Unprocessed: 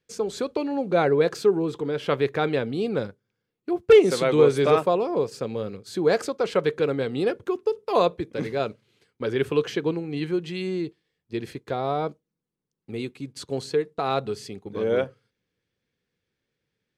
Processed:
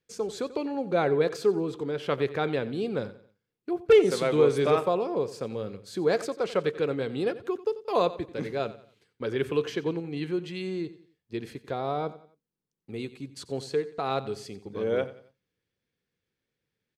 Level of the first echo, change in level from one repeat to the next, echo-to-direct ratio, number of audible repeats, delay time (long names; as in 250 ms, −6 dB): −16.5 dB, −8.5 dB, −16.0 dB, 3, 90 ms